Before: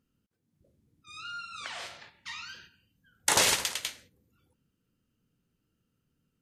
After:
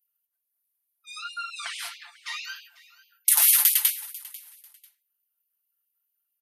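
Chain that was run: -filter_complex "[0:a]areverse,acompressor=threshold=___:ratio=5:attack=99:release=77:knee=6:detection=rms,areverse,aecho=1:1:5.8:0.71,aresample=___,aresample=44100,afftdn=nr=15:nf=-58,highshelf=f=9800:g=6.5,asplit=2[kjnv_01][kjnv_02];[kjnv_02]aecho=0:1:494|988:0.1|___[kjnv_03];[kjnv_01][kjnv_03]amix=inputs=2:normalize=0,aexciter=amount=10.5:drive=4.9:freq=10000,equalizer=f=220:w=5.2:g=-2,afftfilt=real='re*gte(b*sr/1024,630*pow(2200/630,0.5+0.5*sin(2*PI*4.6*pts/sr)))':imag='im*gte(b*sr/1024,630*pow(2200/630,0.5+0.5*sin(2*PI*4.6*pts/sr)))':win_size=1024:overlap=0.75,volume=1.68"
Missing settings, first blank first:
0.0126, 32000, 0.024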